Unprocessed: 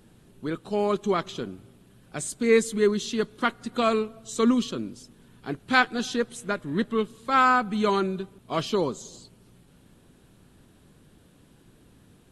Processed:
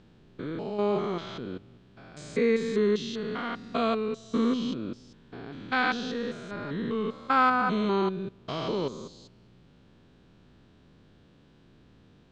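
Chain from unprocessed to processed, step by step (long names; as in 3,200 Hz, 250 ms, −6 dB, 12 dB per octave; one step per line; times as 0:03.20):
spectrum averaged block by block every 200 ms
low-pass filter 5,400 Hz 24 dB per octave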